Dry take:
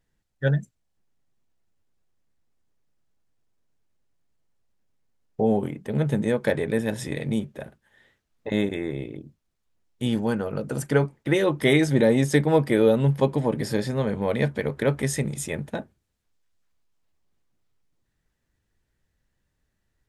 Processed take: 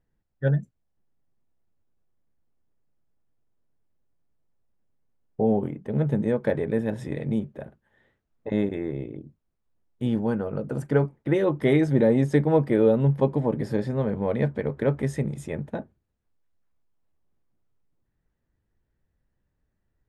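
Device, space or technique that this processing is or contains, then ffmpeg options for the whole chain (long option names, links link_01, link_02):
through cloth: -af "highshelf=frequency=2300:gain=-16.5"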